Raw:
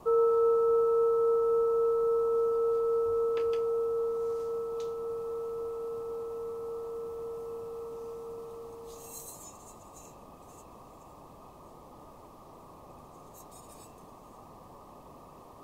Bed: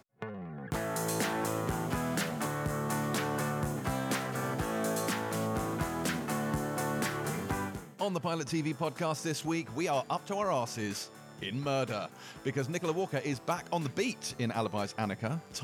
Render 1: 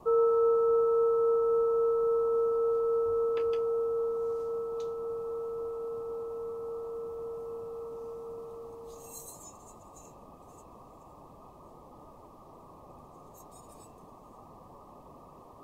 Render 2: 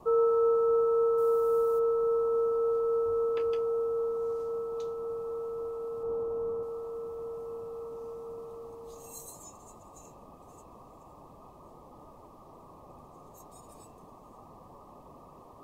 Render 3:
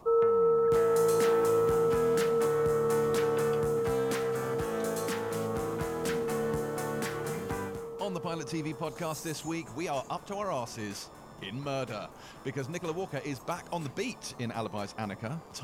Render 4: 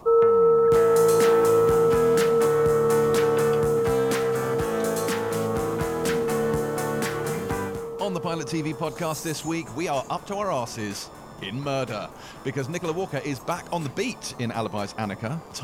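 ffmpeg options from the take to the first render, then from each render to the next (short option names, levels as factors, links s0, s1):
-af "afftdn=nr=6:nf=-52"
-filter_complex "[0:a]asplit=3[s0][s1][s2];[s0]afade=t=out:st=1.17:d=0.02[s3];[s1]aemphasis=mode=production:type=75kf,afade=t=in:st=1.17:d=0.02,afade=t=out:st=1.78:d=0.02[s4];[s2]afade=t=in:st=1.78:d=0.02[s5];[s3][s4][s5]amix=inputs=3:normalize=0,asettb=1/sr,asplit=3[s6][s7][s8];[s6]atrim=end=6.034[s9];[s7]atrim=start=6.03:end=6.63,asetpts=PTS-STARTPTS,afade=t=in:d=0.004:c=qsin,afade=t=out:st=0.596:d=0.004:c=qsin,tiltshelf=f=1400:g=6[s10];[s8]atrim=start=6.626[s11];[s9][s10]acrossfade=d=0.004:c1=hsin:c2=qsin[s12];[s12][s11]acrossfade=d=0.004:c1=qsin:c2=hsin"
-filter_complex "[1:a]volume=0.75[s0];[0:a][s0]amix=inputs=2:normalize=0"
-af "volume=2.24"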